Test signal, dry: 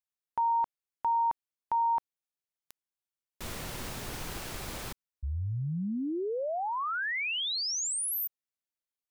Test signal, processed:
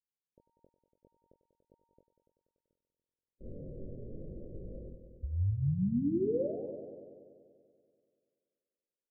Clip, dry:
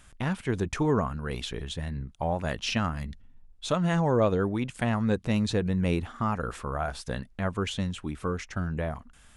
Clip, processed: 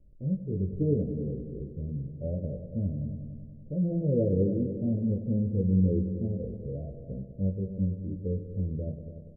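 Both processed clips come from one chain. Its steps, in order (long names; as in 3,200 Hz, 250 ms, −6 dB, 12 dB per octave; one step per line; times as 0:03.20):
Butterworth low-pass 570 Hz 72 dB per octave
harmonic and percussive parts rebalanced percussive −12 dB
double-tracking delay 21 ms −5 dB
echo machine with several playback heads 96 ms, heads all three, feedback 53%, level −14 dB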